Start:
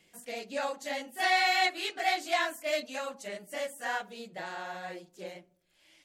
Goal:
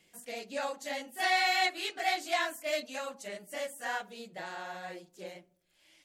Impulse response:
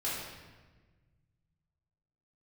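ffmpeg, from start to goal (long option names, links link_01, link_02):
-af "equalizer=frequency=13000:width_type=o:width=1.9:gain=2.5,volume=-2dB"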